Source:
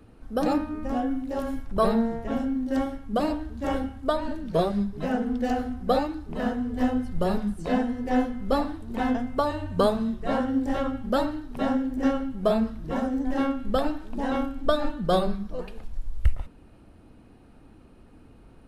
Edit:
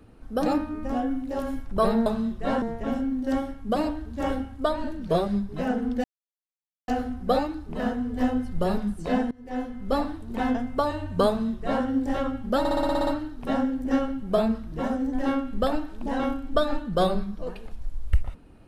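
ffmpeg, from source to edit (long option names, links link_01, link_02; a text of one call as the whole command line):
ffmpeg -i in.wav -filter_complex "[0:a]asplit=13[link_01][link_02][link_03][link_04][link_05][link_06][link_07][link_08][link_09][link_10][link_11][link_12][link_13];[link_01]atrim=end=2.062[link_14];[link_02]atrim=start=9.878:end=10.442[link_15];[link_03]atrim=start=2.058:end=5.48,asetpts=PTS-STARTPTS,afade=type=out:start_time=3.418:duration=0.004:curve=hsin,apad=pad_dur=0.84[link_16];[link_04]atrim=start=5.48:end=7.91,asetpts=PTS-STARTPTS,afade=type=in:duration=0.004:curve=hsin,afade=type=out:start_time=2.426:duration=0.004:curve=hsin:silence=0.0841395[link_17];[link_05]atrim=start=7.91:end=11.252,asetpts=PTS-STARTPTS,afade=type=in:duration=0.72:silence=0.0841395[link_18];[link_06]atrim=start=11.188:end=11.252[link_19];[link_07]atrim=start=11.188:end=11.252[link_20];[link_08]atrim=start=11.188:end=11.252[link_21];[link_09]atrim=start=11.188:end=11.252[link_22];[link_10]atrim=start=11.188:end=11.252[link_23];[link_11]atrim=start=11.188:end=11.252[link_24];[link_12]atrim=start=11.188:end=11.252[link_25];[link_13]atrim=start=11.188[link_26];[link_14][link_15]acrossfade=duration=0.004:curve1=hsin:curve2=hsin[link_27];[link_16][link_17][link_18]concat=n=3:v=0:a=1[link_28];[link_27][link_28]acrossfade=duration=0.004:curve1=hsin:curve2=hsin[link_29];[link_29][link_19]acrossfade=duration=0.004:curve1=hsin:curve2=hsin[link_30];[link_30][link_20]acrossfade=duration=0.004:curve1=hsin:curve2=hsin[link_31];[link_31][link_21]acrossfade=duration=0.004:curve1=hsin:curve2=hsin[link_32];[link_32][link_22]acrossfade=duration=0.004:curve1=hsin:curve2=hsin[link_33];[link_33][link_23]acrossfade=duration=0.004:curve1=hsin:curve2=hsin[link_34];[link_34][link_24]acrossfade=duration=0.004:curve1=hsin:curve2=hsin[link_35];[link_35][link_25]acrossfade=duration=0.004:curve1=hsin:curve2=hsin[link_36];[link_36][link_26]acrossfade=duration=0.004:curve1=hsin:curve2=hsin" out.wav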